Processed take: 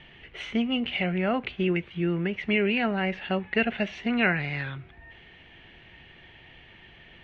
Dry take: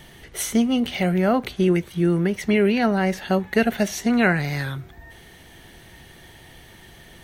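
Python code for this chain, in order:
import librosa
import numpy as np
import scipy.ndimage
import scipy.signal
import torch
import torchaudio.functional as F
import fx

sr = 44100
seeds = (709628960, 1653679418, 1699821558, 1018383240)

y = fx.ladder_lowpass(x, sr, hz=3000.0, resonance_pct=60)
y = y * librosa.db_to_amplitude(3.5)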